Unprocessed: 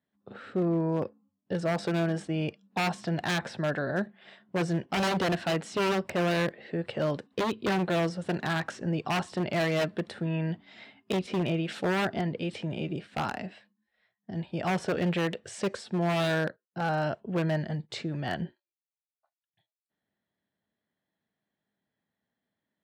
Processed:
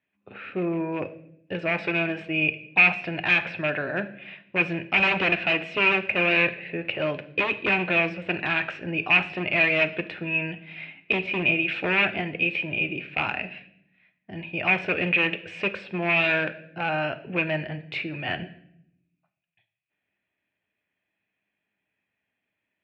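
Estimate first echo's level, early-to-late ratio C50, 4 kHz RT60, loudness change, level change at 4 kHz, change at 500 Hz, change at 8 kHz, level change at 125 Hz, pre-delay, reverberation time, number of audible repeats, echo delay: no echo, 15.0 dB, 0.60 s, +6.5 dB, +5.5 dB, +1.0 dB, under -15 dB, -3.5 dB, 3 ms, 0.70 s, no echo, no echo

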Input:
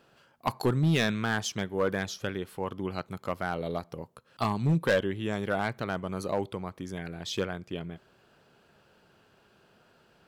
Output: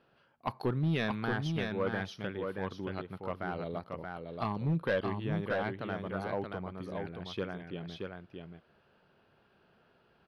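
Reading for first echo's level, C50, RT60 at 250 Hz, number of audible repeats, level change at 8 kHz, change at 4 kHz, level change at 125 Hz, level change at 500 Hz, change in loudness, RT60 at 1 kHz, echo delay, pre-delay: -4.5 dB, no reverb, no reverb, 1, under -15 dB, -8.0 dB, -4.0 dB, -4.0 dB, -5.0 dB, no reverb, 627 ms, no reverb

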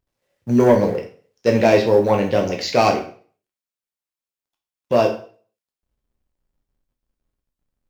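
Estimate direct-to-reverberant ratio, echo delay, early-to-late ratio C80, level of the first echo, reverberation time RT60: 2.0 dB, no echo, 13.5 dB, no echo, 0.45 s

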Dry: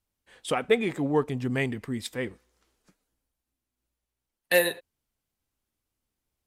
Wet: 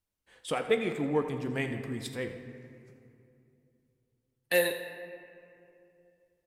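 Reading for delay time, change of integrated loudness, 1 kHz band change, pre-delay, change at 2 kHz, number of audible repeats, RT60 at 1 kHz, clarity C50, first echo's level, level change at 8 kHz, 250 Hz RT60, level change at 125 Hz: 84 ms, -4.0 dB, -4.0 dB, 6 ms, -4.0 dB, 2, 2.5 s, 7.5 dB, -13.5 dB, -4.5 dB, 3.1 s, -4.5 dB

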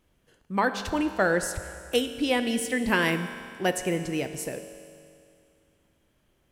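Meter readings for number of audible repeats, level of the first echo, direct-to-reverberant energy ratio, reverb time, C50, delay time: no echo, no echo, 8.0 dB, 2.4 s, 9.5 dB, no echo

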